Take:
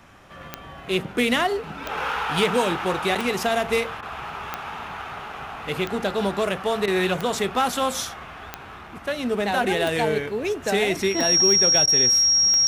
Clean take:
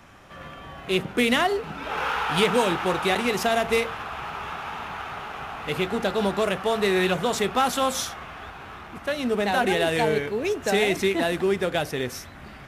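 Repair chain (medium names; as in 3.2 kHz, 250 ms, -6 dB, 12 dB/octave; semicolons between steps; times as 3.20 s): clip repair -10.5 dBFS; de-click; band-stop 5.6 kHz, Q 30; interpolate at 4.01/6.86/11.86 s, 14 ms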